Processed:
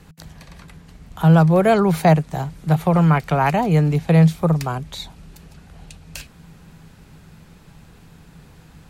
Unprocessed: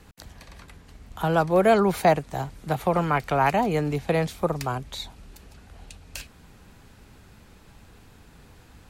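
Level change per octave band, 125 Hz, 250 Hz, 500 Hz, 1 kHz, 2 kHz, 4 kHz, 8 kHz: +13.5 dB, +9.5 dB, +2.5 dB, +2.5 dB, +2.5 dB, +2.5 dB, can't be measured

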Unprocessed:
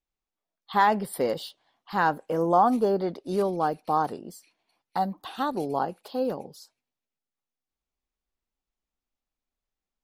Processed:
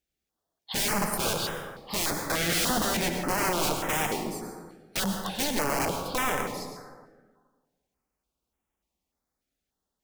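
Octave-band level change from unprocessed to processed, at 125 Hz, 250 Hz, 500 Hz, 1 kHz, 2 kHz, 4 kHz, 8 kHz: +2.0, −2.0, −5.0, −6.0, +4.0, +11.5, +17.5 decibels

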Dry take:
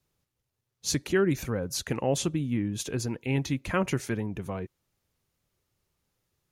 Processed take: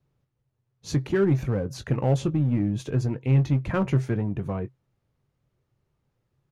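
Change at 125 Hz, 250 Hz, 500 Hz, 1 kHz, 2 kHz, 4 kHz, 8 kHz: +9.0 dB, +3.5 dB, +2.0 dB, +0.5 dB, −3.0 dB, −7.0 dB, below −10 dB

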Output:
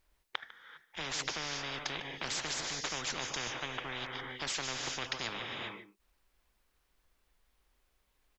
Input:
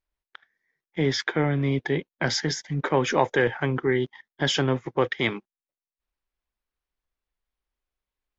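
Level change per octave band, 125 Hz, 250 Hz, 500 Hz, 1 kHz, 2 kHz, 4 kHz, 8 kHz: −22.0 dB, −20.5 dB, −20.0 dB, −11.0 dB, −9.5 dB, −5.0 dB, can't be measured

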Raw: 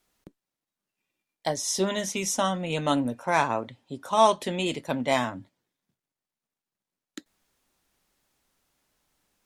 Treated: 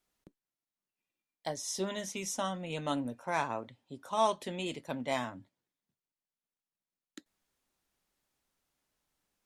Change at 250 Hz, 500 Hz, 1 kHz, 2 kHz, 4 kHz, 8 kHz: −9.0, −9.0, −9.0, −9.0, −9.0, −9.0 decibels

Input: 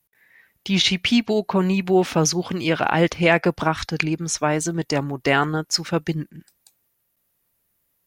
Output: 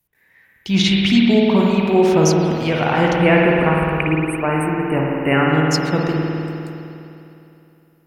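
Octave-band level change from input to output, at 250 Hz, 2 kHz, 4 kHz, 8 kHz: +6.5, +3.0, +0.5, −3.0 decibels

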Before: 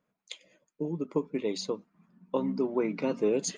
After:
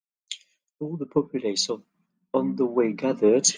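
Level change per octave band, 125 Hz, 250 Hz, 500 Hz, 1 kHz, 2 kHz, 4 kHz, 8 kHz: +4.5, +5.5, +6.5, +5.5, +4.5, +12.0, +13.5 decibels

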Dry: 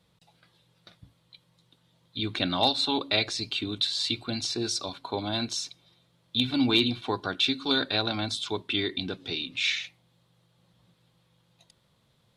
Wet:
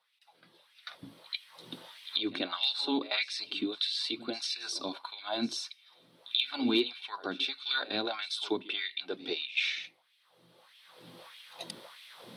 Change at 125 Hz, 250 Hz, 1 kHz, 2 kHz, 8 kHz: −18.5, −5.5, −7.0, −3.5, −8.0 decibels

